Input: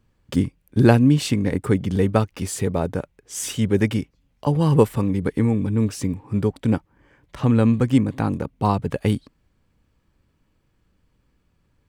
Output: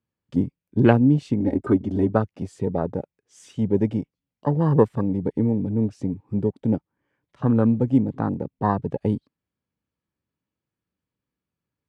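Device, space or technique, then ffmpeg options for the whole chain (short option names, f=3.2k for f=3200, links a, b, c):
over-cleaned archive recording: -filter_complex "[0:a]asettb=1/sr,asplit=3[a][b][c];[a]atrim=end=1.404[d];[b]atrim=start=1.4:end=2.09,asetpts=PTS-STARTPTS,afade=t=in:d=0.004:c=qsin,afade=t=out:st=0.686:d=0.004:c=qsin,aecho=1:1:3.2:0.94,atrim=end_sample=30429[e];[c]atrim=start=2.086[f];[d][e]acrossfade=d=0.004:c1=hsin:c2=qsin[g];[g][f]acrossfade=d=0.004:c1=qsin:c2=hsin,highpass=110,lowpass=6.8k,afwtdn=0.0447,volume=-1dB"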